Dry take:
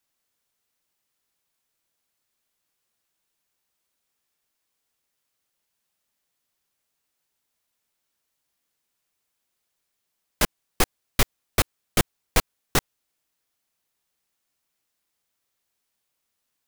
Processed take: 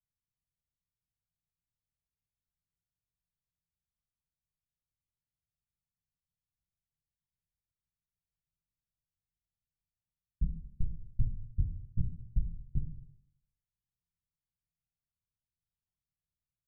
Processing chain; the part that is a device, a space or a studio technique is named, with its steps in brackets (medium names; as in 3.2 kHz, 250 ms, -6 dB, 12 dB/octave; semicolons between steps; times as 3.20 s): club heard from the street (peak limiter -11 dBFS, peak gain reduction 6 dB; low-pass 140 Hz 24 dB/octave; reverberation RT60 0.80 s, pre-delay 7 ms, DRR 1 dB); trim +1 dB